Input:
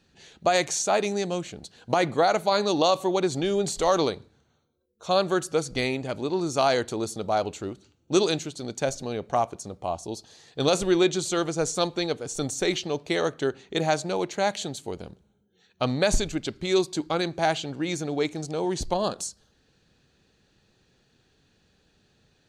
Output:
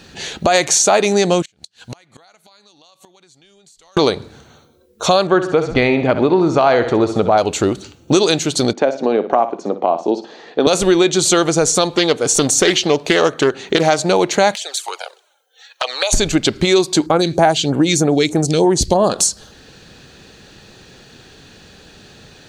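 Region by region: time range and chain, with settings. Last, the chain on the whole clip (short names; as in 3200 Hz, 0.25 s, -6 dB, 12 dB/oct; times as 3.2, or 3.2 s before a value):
1.42–3.97 passive tone stack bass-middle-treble 5-5-5 + compressor 5:1, threshold -39 dBFS + flipped gate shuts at -39 dBFS, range -29 dB
5.27–7.38 LPF 2300 Hz + feedback echo 65 ms, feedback 43%, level -12 dB
8.73–10.67 HPF 230 Hz 24 dB/oct + tape spacing loss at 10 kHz 39 dB + flutter echo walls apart 10.2 m, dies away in 0.27 s
11.96–13.99 low shelf 120 Hz -8.5 dB + notches 50/100 Hz + Doppler distortion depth 0.15 ms
14.55–16.13 Bessel high-pass 900 Hz, order 8 + compressor 3:1, threshold -37 dBFS + envelope flanger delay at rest 4.2 ms, full sweep at -36 dBFS
17.06–19.1 HPF 41 Hz + phaser stages 2, 3.2 Hz, lowest notch 800–4900 Hz
whole clip: low shelf 240 Hz -4.5 dB; compressor 4:1, threshold -35 dBFS; maximiser +24.5 dB; gain -1 dB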